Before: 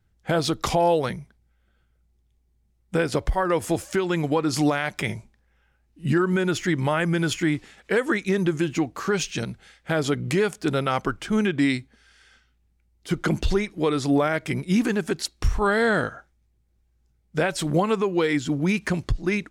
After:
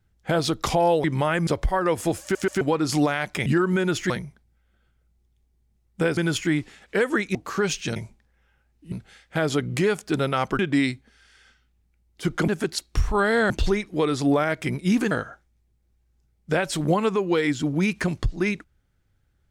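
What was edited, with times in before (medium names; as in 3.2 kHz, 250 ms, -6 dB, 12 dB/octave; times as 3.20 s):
1.04–3.11 s: swap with 6.70–7.13 s
3.86 s: stutter in place 0.13 s, 3 plays
5.10–6.06 s: move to 9.46 s
8.31–8.85 s: delete
11.13–11.45 s: delete
14.95–15.97 s: move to 13.34 s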